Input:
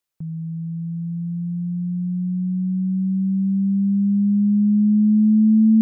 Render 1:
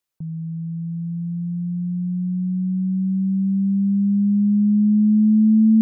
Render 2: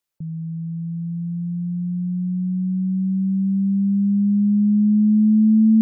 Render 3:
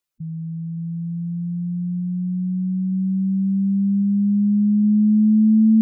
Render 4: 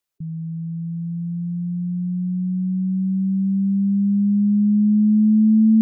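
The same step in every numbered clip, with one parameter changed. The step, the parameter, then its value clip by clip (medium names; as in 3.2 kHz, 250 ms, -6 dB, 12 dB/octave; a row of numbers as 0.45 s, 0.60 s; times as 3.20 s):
spectral gate, under each frame's peak: -50 dB, -40 dB, -10 dB, -25 dB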